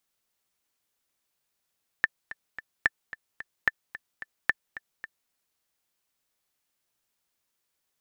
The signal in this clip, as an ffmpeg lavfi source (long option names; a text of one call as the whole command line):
ffmpeg -f lavfi -i "aevalsrc='pow(10,(-7.5-16.5*gte(mod(t,3*60/220),60/220))/20)*sin(2*PI*1770*mod(t,60/220))*exp(-6.91*mod(t,60/220)/0.03)':duration=3.27:sample_rate=44100" out.wav